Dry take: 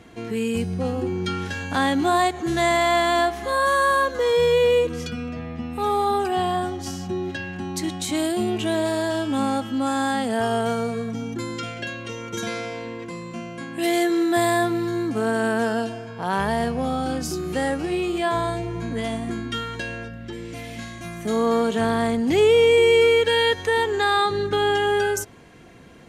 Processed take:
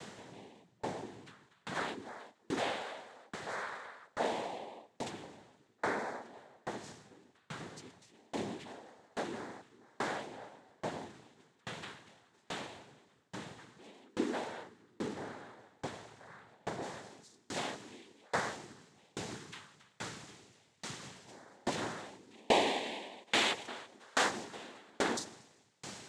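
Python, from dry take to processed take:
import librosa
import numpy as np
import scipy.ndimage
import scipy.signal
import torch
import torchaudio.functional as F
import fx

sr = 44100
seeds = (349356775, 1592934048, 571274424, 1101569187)

y = fx.low_shelf(x, sr, hz=490.0, db=-8.5)
y = fx.dmg_noise_colour(y, sr, seeds[0], colour='pink', level_db=-37.0)
y = fx.high_shelf(y, sr, hz=3500.0, db=fx.steps((0.0, -5.5), (16.81, 6.0)))
y = fx.echo_heads(y, sr, ms=78, heads='all three', feedback_pct=65, wet_db=-22.5)
y = fx.noise_vocoder(y, sr, seeds[1], bands=6)
y = fx.tremolo_decay(y, sr, direction='decaying', hz=1.2, depth_db=35)
y = y * librosa.db_to_amplitude(-5.5)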